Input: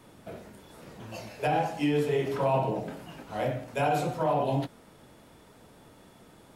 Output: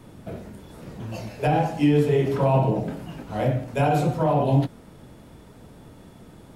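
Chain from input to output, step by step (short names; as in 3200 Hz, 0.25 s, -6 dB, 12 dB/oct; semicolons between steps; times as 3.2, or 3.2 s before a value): low shelf 310 Hz +11 dB; gain +2 dB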